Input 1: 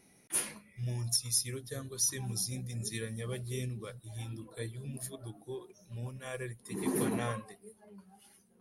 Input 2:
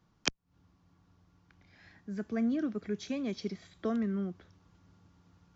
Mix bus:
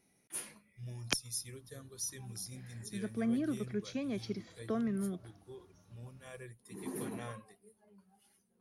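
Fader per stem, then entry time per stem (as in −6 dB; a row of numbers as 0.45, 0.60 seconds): −9.0, −2.5 decibels; 0.00, 0.85 seconds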